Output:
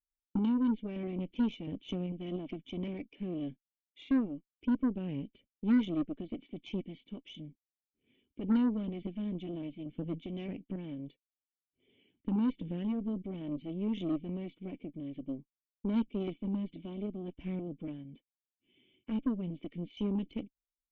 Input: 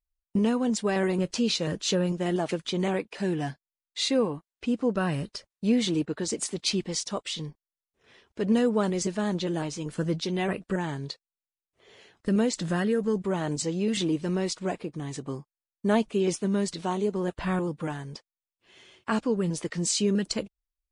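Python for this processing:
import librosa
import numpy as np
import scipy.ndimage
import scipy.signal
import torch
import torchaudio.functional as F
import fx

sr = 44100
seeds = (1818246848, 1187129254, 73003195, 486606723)

y = fx.formant_cascade(x, sr, vowel='i')
y = fx.cheby_harmonics(y, sr, harmonics=(8,), levels_db=(-22,), full_scale_db=-19.5)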